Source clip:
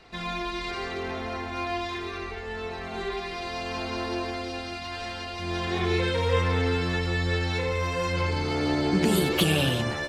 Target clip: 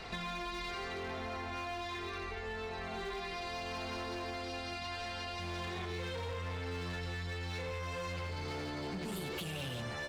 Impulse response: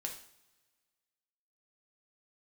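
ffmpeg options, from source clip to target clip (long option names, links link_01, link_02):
-af "alimiter=limit=-20.5dB:level=0:latency=1:release=298,asoftclip=type=hard:threshold=-28dB,equalizer=frequency=310:width_type=o:width=0.6:gain=-5,acompressor=threshold=-47dB:ratio=6,volume=7.5dB"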